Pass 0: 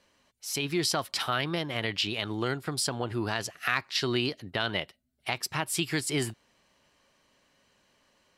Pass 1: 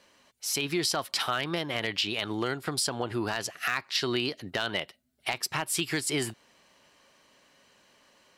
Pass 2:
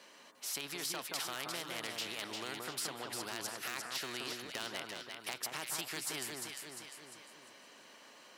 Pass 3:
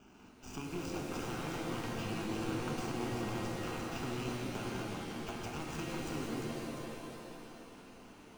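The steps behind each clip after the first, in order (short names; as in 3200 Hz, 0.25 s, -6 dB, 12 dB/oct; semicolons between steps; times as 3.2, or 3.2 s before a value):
low shelf 130 Hz -10 dB; compressor 2:1, threshold -35 dBFS, peak gain reduction 7.5 dB; hard clip -23.5 dBFS, distortion -21 dB; gain +6 dB
HPF 240 Hz 12 dB/oct; on a send: echo with dull and thin repeats by turns 0.175 s, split 1500 Hz, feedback 56%, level -3.5 dB; on the sum: spectral compressor 2:1; gain -7 dB
median filter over 41 samples; fixed phaser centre 2700 Hz, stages 8; shimmer reverb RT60 2.2 s, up +7 st, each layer -2 dB, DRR 1.5 dB; gain +12 dB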